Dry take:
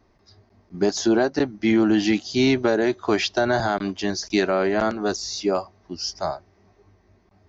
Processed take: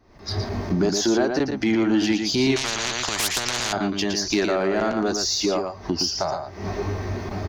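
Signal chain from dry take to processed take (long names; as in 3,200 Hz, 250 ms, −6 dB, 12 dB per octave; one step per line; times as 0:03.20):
camcorder AGC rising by 79 dB per second
single-tap delay 115 ms −6.5 dB
in parallel at −5 dB: soft clipping −21.5 dBFS, distortion −9 dB
0:02.56–0:03.73: on the sum: every bin compressed towards the loudest bin 10 to 1
level −4 dB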